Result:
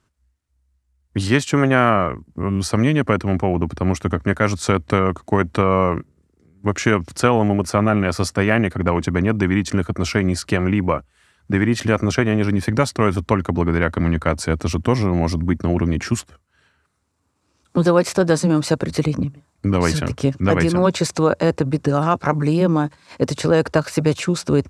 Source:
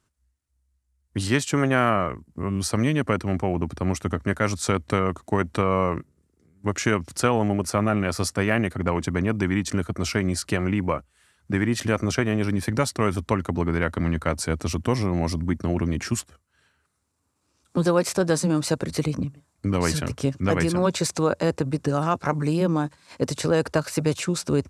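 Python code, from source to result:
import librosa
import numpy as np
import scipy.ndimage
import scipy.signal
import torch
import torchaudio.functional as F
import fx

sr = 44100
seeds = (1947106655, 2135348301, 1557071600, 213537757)

y = fx.high_shelf(x, sr, hz=7200.0, db=-10.0)
y = y * librosa.db_to_amplitude(5.5)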